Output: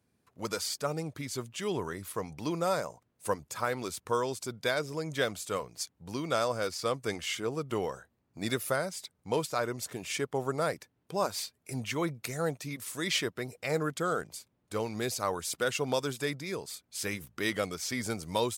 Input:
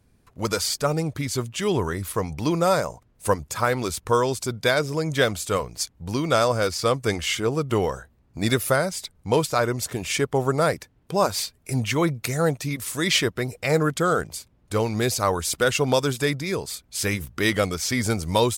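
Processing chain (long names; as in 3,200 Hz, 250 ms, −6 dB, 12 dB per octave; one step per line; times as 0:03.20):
Bessel high-pass filter 150 Hz, order 2
level −9 dB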